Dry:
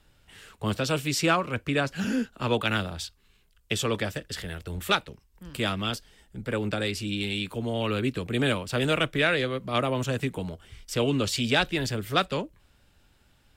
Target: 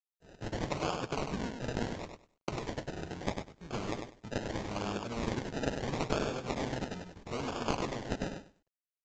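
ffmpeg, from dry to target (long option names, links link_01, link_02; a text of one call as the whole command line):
ffmpeg -i in.wav -filter_complex "[0:a]agate=range=-47dB:threshold=-49dB:ratio=16:detection=peak,acrossover=split=920|2000[link_01][link_02][link_03];[link_01]acompressor=threshold=-35dB:ratio=4[link_04];[link_02]acompressor=threshold=-36dB:ratio=4[link_05];[link_03]acompressor=threshold=-37dB:ratio=4[link_06];[link_04][link_05][link_06]amix=inputs=3:normalize=0,tremolo=f=230:d=0.75,acrossover=split=110[link_07][link_08];[link_07]acompressor=threshold=-54dB:ratio=20[link_09];[link_09][link_08]amix=inputs=2:normalize=0,atempo=1.5,adynamicequalizer=threshold=0.00224:dfrequency=2600:dqfactor=1.8:tfrequency=2600:tqfactor=1.8:attack=5:release=100:ratio=0.375:range=3:mode=boostabove:tftype=bell,acrusher=samples=31:mix=1:aa=0.000001:lfo=1:lforange=18.6:lforate=0.76,asplit=2[link_10][link_11];[link_11]aecho=0:1:99|198|297:0.501|0.0852|0.0145[link_12];[link_10][link_12]amix=inputs=2:normalize=0" -ar 16000 -c:a pcm_mulaw out.wav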